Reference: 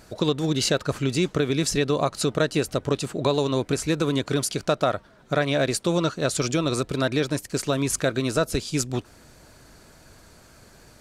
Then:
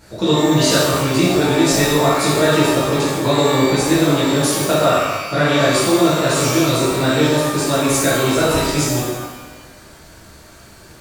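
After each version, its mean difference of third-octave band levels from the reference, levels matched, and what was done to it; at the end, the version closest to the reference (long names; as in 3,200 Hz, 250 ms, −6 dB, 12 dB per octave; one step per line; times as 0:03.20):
9.0 dB: reverb with rising layers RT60 1.1 s, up +12 semitones, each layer −8 dB, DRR −10 dB
level −2 dB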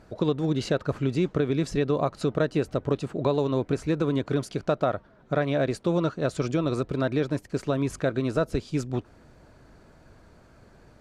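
5.0 dB: low-pass filter 1,200 Hz 6 dB per octave
level −1 dB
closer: second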